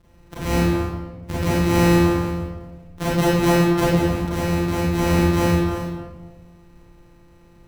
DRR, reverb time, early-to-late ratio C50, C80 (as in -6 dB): -10.0 dB, 1.4 s, -3.5 dB, 0.0 dB